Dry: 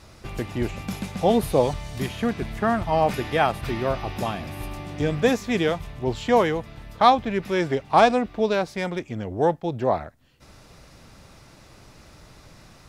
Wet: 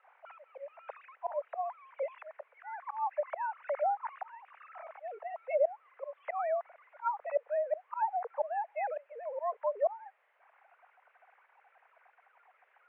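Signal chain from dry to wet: sine-wave speech; tilt shelf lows +3.5 dB, about 710 Hz; auto swell 0.399 s; treble ducked by the level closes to 600 Hz, closed at -24 dBFS; in parallel at -9 dB: requantised 8-bit, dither triangular; on the sum: mistuned SSB +200 Hz 270–2100 Hz; gain -5 dB

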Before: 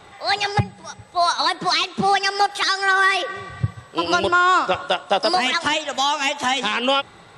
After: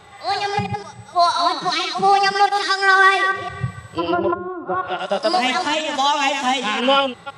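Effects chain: reverse delay 0.166 s, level -6 dB; harmonic-percussive split percussive -15 dB; 3.89–4.99 treble ducked by the level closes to 300 Hz, closed at -14 dBFS; gain +3.5 dB

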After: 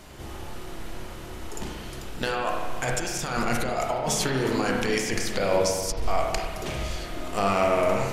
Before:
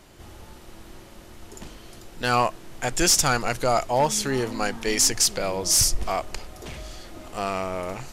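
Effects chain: negative-ratio compressor -28 dBFS, ratio -1; spring tank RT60 1.5 s, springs 30/46 ms, chirp 50 ms, DRR -0.5 dB

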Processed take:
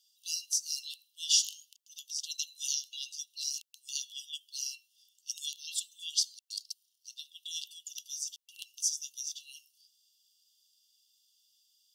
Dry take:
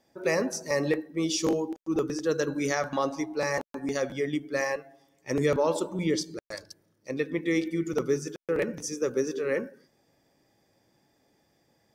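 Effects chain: brick-wall FIR high-pass 2700 Hz; gain +6 dB

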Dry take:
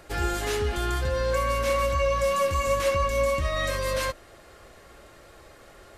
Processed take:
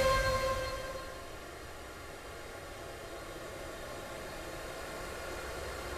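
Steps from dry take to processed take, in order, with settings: upward compressor, threshold -37 dBFS; Paulstretch 16×, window 0.25 s, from 4.13; gain +4.5 dB

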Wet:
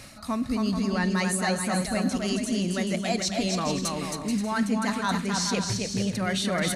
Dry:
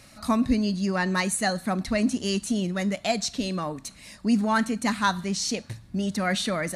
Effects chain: reverse; compressor 6:1, threshold -32 dBFS, peak gain reduction 14 dB; reverse; bouncing-ball echo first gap 0.27 s, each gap 0.6×, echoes 5; gain +6.5 dB

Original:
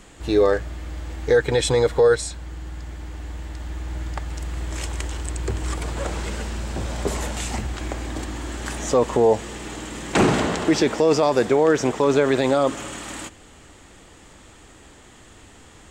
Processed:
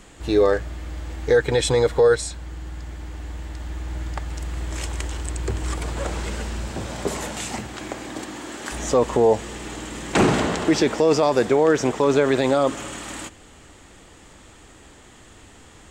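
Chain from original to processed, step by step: 6.68–8.71 HPF 80 Hz -> 240 Hz 12 dB/oct

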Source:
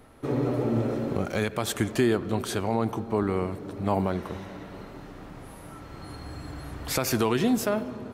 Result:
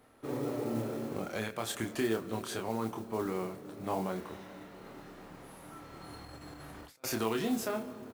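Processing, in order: doubler 27 ms -4.5 dB; 4.85–7.04 negative-ratio compressor -37 dBFS, ratio -0.5; low shelf 130 Hz -11.5 dB; modulation noise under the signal 21 dB; gain -8 dB

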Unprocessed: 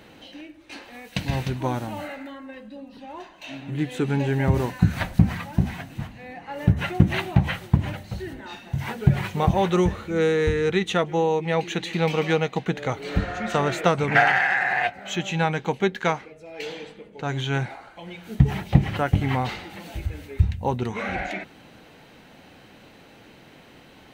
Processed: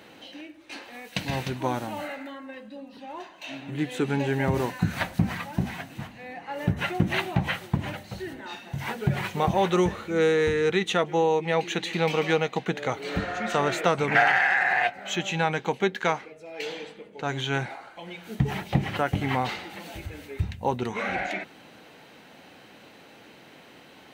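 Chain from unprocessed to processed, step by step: HPF 240 Hz 6 dB/oct; in parallel at -1 dB: limiter -14 dBFS, peak gain reduction 10 dB; on the sum: gain -5 dB

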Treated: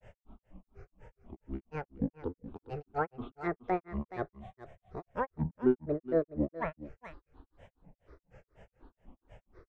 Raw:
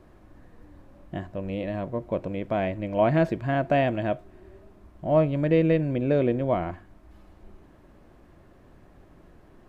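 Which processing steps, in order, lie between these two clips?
downsampling 11025 Hz; in parallel at -10 dB: hard clip -29 dBFS, distortion -4 dB; on the sum: fixed phaser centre 670 Hz, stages 6; grains 0.149 s, grains 4.1/s, pitch spread up and down by 12 st; on a send: echo 0.422 s -15 dB; on the sum: treble ducked by the level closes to 1500 Hz, closed at -29.5 dBFS

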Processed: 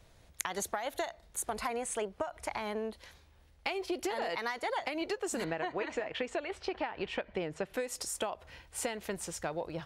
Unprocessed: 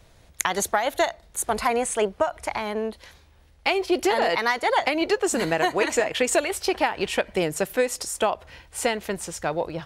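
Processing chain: compressor, threshold -25 dBFS, peak gain reduction 9 dB; 5.44–7.74 LPF 3200 Hz 12 dB/oct; gain -6.5 dB

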